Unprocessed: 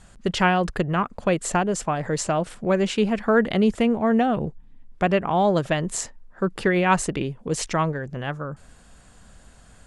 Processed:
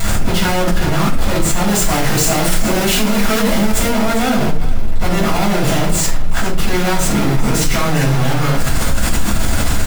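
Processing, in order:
sign of each sample alone
0:01.67–0:03.89: high-shelf EQ 5,600 Hz +5.5 dB
single-tap delay 401 ms −12 dB
convolution reverb RT60 0.45 s, pre-delay 5 ms, DRR −7.5 dB
envelope flattener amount 50%
level −10 dB

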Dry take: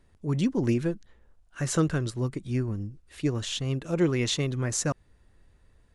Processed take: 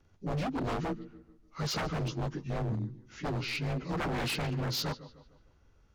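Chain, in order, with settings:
partials spread apart or drawn together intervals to 88%
tape delay 148 ms, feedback 46%, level −17.5 dB, low-pass 4,300 Hz
wave folding −27.5 dBFS

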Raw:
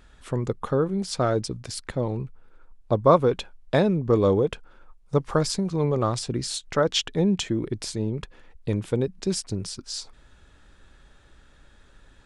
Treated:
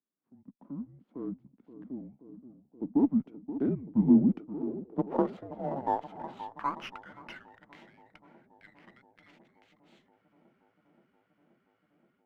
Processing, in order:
source passing by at 0:05.07, 12 m/s, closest 4.9 metres
harmonic and percussive parts rebalanced percussive −6 dB
automatic gain control gain up to 15.5 dB
bucket-brigade delay 526 ms, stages 4,096, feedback 84%, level −12.5 dB
single-sideband voice off tune −270 Hz 460–3,300 Hz
band-pass filter sweep 240 Hz → 1,900 Hz, 0:04.03–0:07.66
windowed peak hold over 3 samples

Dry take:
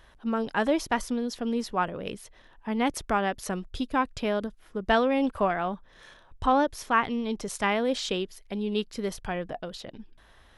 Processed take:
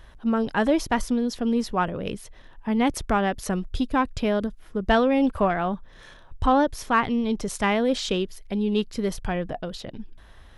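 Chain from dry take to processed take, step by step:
low-shelf EQ 210 Hz +8 dB
in parallel at −9 dB: soft clipping −19.5 dBFS, distortion −13 dB

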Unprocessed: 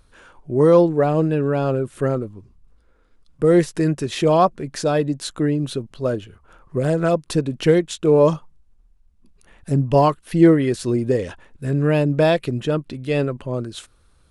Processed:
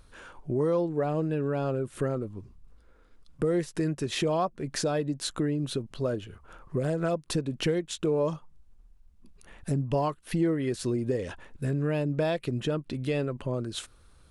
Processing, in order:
downward compressor 3 to 1, threshold −28 dBFS, peak gain reduction 15 dB

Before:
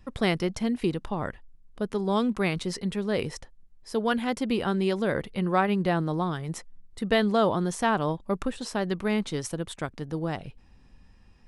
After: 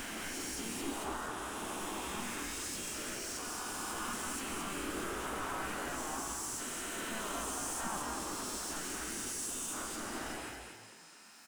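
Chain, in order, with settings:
peak hold with a rise ahead of every peak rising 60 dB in 2.16 s
first difference
soft clipping −27 dBFS, distortion −16 dB
mid-hump overdrive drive 33 dB, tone 1,900 Hz, clips at −27 dBFS
pitch-shifted copies added −5 semitones −3 dB, −3 semitones −3 dB
graphic EQ with 10 bands 125 Hz −11 dB, 250 Hz +9 dB, 500 Hz −12 dB, 1,000 Hz −3 dB, 2,000 Hz −10 dB, 4,000 Hz −11 dB, 8,000 Hz +4 dB
echo with shifted repeats 221 ms, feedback 40%, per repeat +54 Hz, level −4 dB

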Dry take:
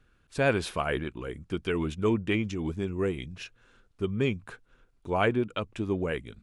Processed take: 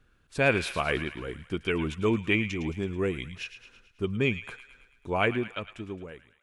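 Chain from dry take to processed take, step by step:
fade-out on the ending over 1.40 s
dynamic equaliser 2,400 Hz, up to +7 dB, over −48 dBFS, Q 2.1
on a send: delay with a high-pass on its return 109 ms, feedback 56%, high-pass 1,400 Hz, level −10.5 dB

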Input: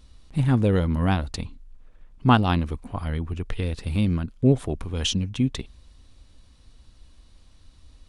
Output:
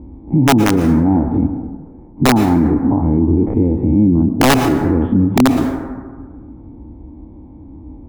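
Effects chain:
every bin's largest magnitude spread in time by 60 ms
high-pass filter 65 Hz 12 dB per octave
downward compressor 2 to 1, threshold −34 dBFS, peak gain reduction 13.5 dB
formant resonators in series u
wrap-around overflow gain 29 dB
dense smooth reverb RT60 1.5 s, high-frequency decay 0.35×, pre-delay 100 ms, DRR 11.5 dB
boost into a limiter +34.5 dB
level −4 dB

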